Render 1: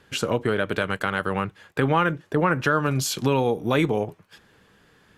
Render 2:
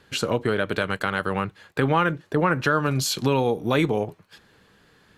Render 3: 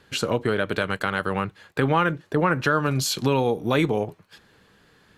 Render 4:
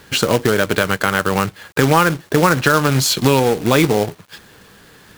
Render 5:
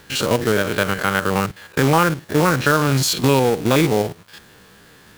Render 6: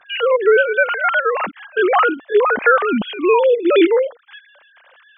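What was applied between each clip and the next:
parametric band 4,200 Hz +6 dB 0.21 octaves
no processing that can be heard
in parallel at −0.5 dB: downward compressor 10 to 1, threshold −28 dBFS, peak gain reduction 13 dB; on the sum: log-companded quantiser 4 bits; level +5 dB
spectrum averaged block by block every 50 ms; level −1 dB
three sine waves on the formant tracks; level +2.5 dB

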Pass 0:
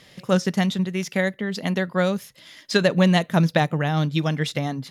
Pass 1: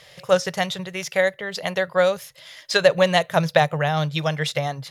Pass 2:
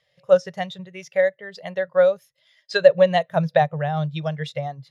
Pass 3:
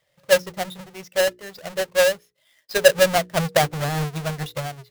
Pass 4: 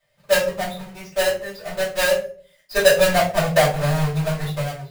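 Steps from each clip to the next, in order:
drawn EQ curve 150 Hz 0 dB, 230 Hz −18 dB, 550 Hz +7 dB, 910 Hz +4 dB; level −1 dB
every bin expanded away from the loudest bin 1.5 to 1
each half-wave held at its own peak; mains-hum notches 60/120/180/240/300/360/420/480 Hz; level −4.5 dB
convolution reverb RT60 0.45 s, pre-delay 3 ms, DRR −9.5 dB; level −9 dB

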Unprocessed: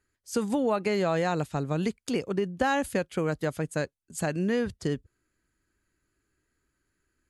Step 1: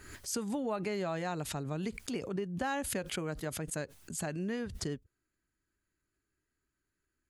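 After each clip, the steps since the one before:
de-essing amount 40%
notch filter 500 Hz, Q 12
background raised ahead of every attack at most 59 dB per second
level −8.5 dB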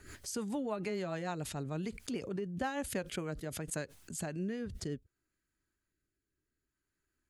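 rotating-speaker cabinet horn 6.7 Hz, later 0.6 Hz, at 0:02.69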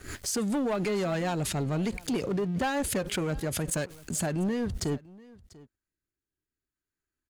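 leveller curve on the samples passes 3
single-tap delay 692 ms −22 dB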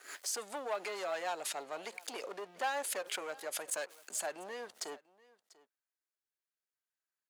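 four-pole ladder high-pass 480 Hz, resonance 20%

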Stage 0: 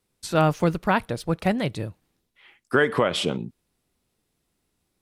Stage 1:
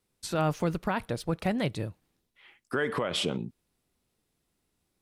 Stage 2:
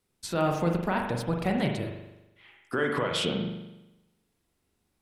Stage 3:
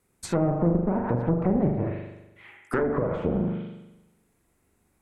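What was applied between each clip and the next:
brickwall limiter −15.5 dBFS, peak gain reduction 7.5 dB; level −3 dB
convolution reverb RT60 0.95 s, pre-delay 41 ms, DRR 2 dB
asymmetric clip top −34 dBFS; treble cut that deepens with the level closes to 600 Hz, closed at −26.5 dBFS; flat-topped bell 4,000 Hz −8.5 dB 1.2 octaves; level +7.5 dB

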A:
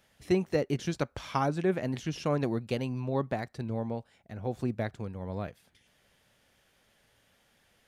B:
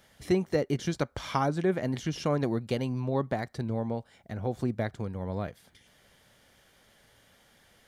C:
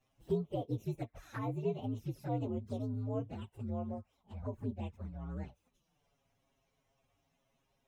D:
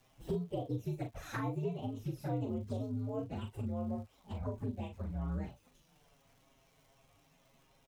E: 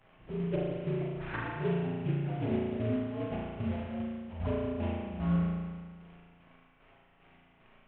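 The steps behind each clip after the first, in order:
notch filter 2,600 Hz, Q 9.7; in parallel at +2 dB: downward compressor, threshold −39 dBFS, peak gain reduction 17 dB; on the sum: level −1 dB
partials spread apart or drawn together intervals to 124%; high-shelf EQ 2,100 Hz −9.5 dB; flanger swept by the level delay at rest 7.7 ms, full sweep at −28.5 dBFS; level −5.5 dB
downward compressor 3 to 1, threshold −47 dBFS, peak gain reduction 14.5 dB; surface crackle 230 per second −68 dBFS; double-tracking delay 40 ms −6.5 dB; level +9 dB
variable-slope delta modulation 16 kbit/s; square-wave tremolo 2.5 Hz, depth 65%, duty 40%; spring reverb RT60 1.6 s, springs 35 ms, chirp 30 ms, DRR −4 dB; level +3.5 dB

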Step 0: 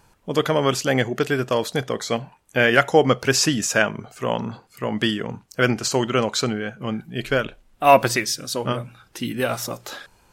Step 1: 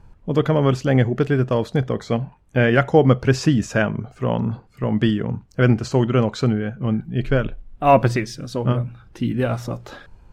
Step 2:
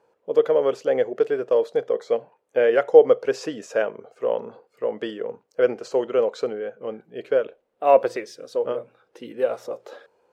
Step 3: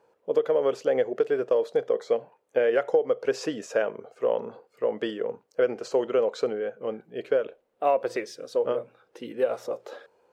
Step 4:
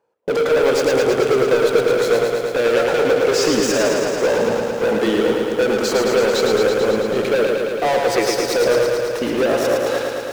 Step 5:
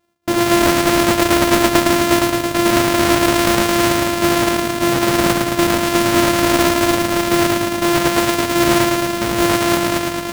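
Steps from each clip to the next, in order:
RIAA equalisation playback; level −2 dB
high-pass with resonance 480 Hz, resonance Q 5; level −8.5 dB
downward compressor 16 to 1, threshold −18 dBFS, peak gain reduction 13 dB
leveller curve on the samples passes 5; brickwall limiter −19 dBFS, peak gain reduction 8.5 dB; feedback echo at a low word length 110 ms, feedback 80%, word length 9 bits, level −4 dB; level +4 dB
samples sorted by size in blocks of 128 samples; noise that follows the level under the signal 14 dB; highs frequency-modulated by the lows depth 0.59 ms; level +2.5 dB

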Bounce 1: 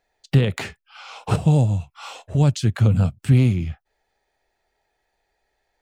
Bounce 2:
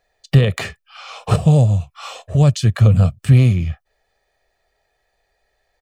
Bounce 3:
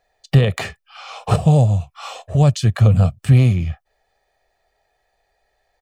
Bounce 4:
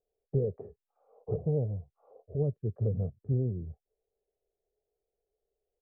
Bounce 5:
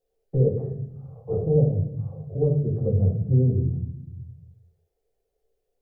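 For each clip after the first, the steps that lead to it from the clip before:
comb filter 1.7 ms, depth 44%; level +3.5 dB
parametric band 780 Hz +5 dB 0.59 octaves; level −1 dB
transistor ladder low-pass 470 Hz, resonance 70%; level −7 dB
convolution reverb RT60 0.80 s, pre-delay 4 ms, DRR −2.5 dB; level +3 dB

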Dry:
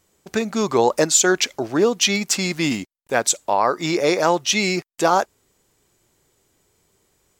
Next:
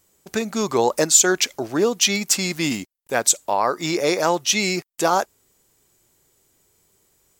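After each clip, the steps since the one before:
high-shelf EQ 8,100 Hz +10.5 dB
level −2 dB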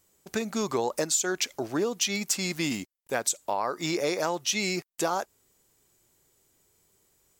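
downward compressor 5 to 1, threshold −19 dBFS, peak gain reduction 9.5 dB
level −4.5 dB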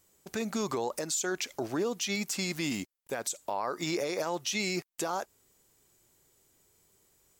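brickwall limiter −22 dBFS, peak gain reduction 10 dB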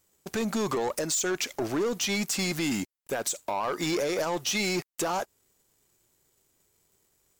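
leveller curve on the samples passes 2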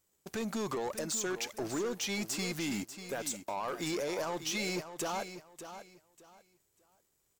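repeating echo 592 ms, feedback 24%, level −11 dB
level −7 dB

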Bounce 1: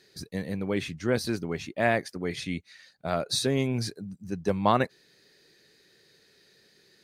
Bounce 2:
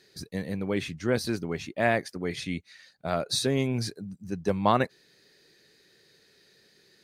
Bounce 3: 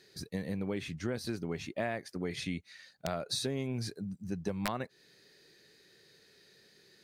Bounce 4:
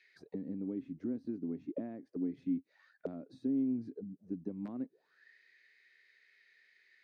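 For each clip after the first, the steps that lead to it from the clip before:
no processing that can be heard
harmonic and percussive parts rebalanced percussive −3 dB; downward compressor 8 to 1, threshold −31 dBFS, peak gain reduction 13 dB; wrap-around overflow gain 21 dB
envelope filter 270–2,400 Hz, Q 7.7, down, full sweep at −35.5 dBFS; level +8.5 dB

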